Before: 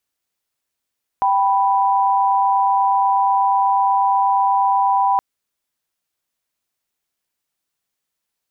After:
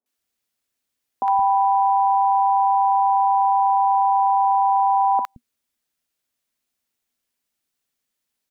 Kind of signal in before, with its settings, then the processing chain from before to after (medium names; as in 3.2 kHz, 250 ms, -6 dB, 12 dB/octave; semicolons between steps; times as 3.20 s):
chord G5/B5 sine, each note -16 dBFS 3.97 s
peaking EQ 240 Hz +9.5 dB 0.29 oct; three bands offset in time mids, highs, lows 60/170 ms, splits 200/980 Hz